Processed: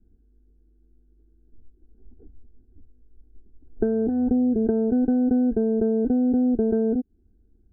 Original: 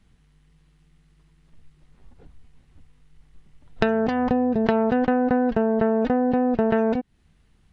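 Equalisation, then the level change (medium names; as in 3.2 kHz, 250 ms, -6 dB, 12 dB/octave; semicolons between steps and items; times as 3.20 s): Butterworth band-stop 1.1 kHz, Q 0.58; rippled Chebyshev low-pass 1.6 kHz, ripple 3 dB; static phaser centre 560 Hz, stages 6; +5.5 dB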